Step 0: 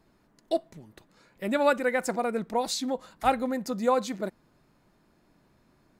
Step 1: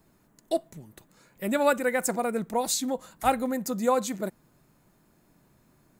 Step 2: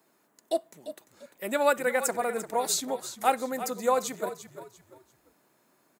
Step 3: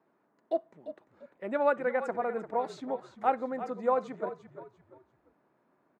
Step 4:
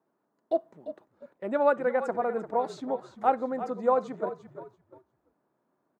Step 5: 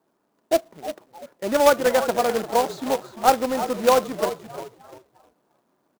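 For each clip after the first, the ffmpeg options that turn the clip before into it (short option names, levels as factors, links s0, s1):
-filter_complex "[0:a]equalizer=f=140:w=1.5:g=4,acrossover=split=740|3500[s0][s1][s2];[s2]aexciter=amount=2.7:drive=6.1:freq=6500[s3];[s0][s1][s3]amix=inputs=3:normalize=0"
-filter_complex "[0:a]highpass=370,asplit=2[s0][s1];[s1]asplit=3[s2][s3][s4];[s2]adelay=345,afreqshift=-44,volume=0.251[s5];[s3]adelay=690,afreqshift=-88,volume=0.0776[s6];[s4]adelay=1035,afreqshift=-132,volume=0.0243[s7];[s5][s6][s7]amix=inputs=3:normalize=0[s8];[s0][s8]amix=inputs=2:normalize=0"
-af "lowpass=1500,volume=0.794"
-af "agate=range=0.398:threshold=0.00178:ratio=16:detection=peak,equalizer=f=2200:t=o:w=0.98:g=-6,volume=1.5"
-filter_complex "[0:a]asplit=4[s0][s1][s2][s3];[s1]adelay=309,afreqshift=98,volume=0.126[s4];[s2]adelay=618,afreqshift=196,volume=0.0452[s5];[s3]adelay=927,afreqshift=294,volume=0.0164[s6];[s0][s4][s5][s6]amix=inputs=4:normalize=0,acrusher=bits=2:mode=log:mix=0:aa=0.000001,volume=2.11"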